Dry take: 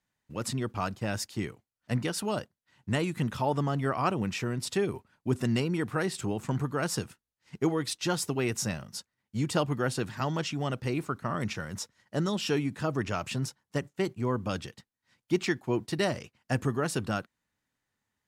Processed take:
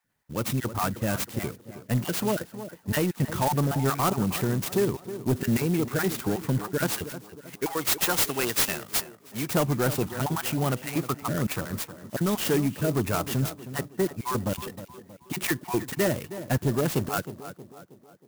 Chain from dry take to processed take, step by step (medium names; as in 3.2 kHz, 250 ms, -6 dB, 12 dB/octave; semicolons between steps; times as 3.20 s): random holes in the spectrogram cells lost 23%; 7.04–9.50 s: tilt EQ +4 dB/octave; saturation -23 dBFS, distortion -14 dB; tape echo 316 ms, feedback 55%, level -10 dB, low-pass 1.3 kHz; sampling jitter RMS 0.062 ms; trim +6.5 dB